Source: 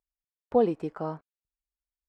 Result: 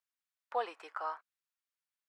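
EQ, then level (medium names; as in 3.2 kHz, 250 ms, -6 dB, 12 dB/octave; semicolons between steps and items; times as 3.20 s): ladder high-pass 960 Hz, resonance 25%; tilt EQ -1.5 dB/octave; +10.0 dB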